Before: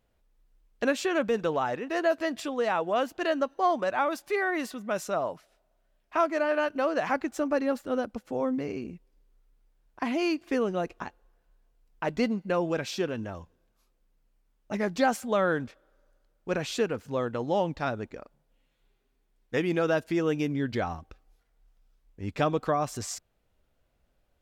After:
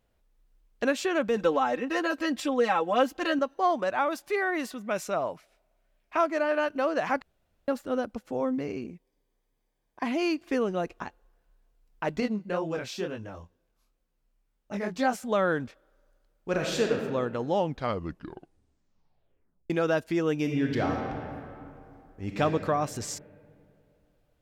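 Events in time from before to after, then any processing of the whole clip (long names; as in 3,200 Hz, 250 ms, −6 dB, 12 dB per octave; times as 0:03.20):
0:01.36–0:03.39: comb filter 3.8 ms, depth 92%
0:04.86–0:06.17: parametric band 2,300 Hz +6.5 dB 0.28 octaves
0:07.22–0:07.68: fill with room tone
0:08.86–0:10.04: notch comb filter 1,400 Hz
0:12.20–0:15.24: chorus effect 2.1 Hz, delay 19 ms, depth 6.3 ms
0:16.49–0:16.96: thrown reverb, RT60 1.5 s, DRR 1 dB
0:17.58: tape stop 2.12 s
0:20.36–0:22.41: thrown reverb, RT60 2.6 s, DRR 1 dB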